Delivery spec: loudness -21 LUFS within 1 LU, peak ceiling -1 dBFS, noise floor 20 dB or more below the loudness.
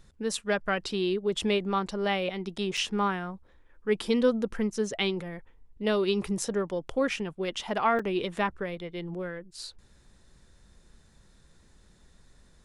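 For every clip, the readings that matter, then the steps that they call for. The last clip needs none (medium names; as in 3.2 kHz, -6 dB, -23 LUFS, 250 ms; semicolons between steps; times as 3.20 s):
dropouts 2; longest dropout 4.4 ms; loudness -29.5 LUFS; peak level -12.0 dBFS; loudness target -21.0 LUFS
-> interpolate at 2.77/7.99 s, 4.4 ms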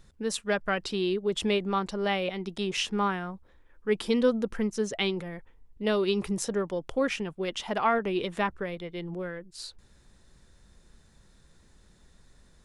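dropouts 0; loudness -29.5 LUFS; peak level -12.0 dBFS; loudness target -21.0 LUFS
-> trim +8.5 dB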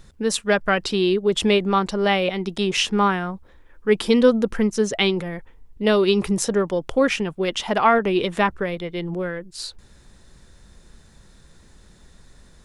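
loudness -21.0 LUFS; peak level -3.5 dBFS; noise floor -52 dBFS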